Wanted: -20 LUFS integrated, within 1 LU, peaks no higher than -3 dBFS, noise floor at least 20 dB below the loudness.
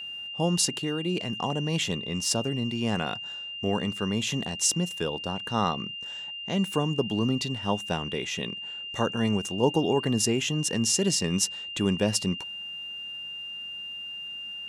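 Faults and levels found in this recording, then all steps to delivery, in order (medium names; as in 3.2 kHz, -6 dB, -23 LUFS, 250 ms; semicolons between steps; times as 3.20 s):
steady tone 2.8 kHz; tone level -35 dBFS; loudness -28.0 LUFS; peak level -10.0 dBFS; loudness target -20.0 LUFS
-> band-stop 2.8 kHz, Q 30; trim +8 dB; peak limiter -3 dBFS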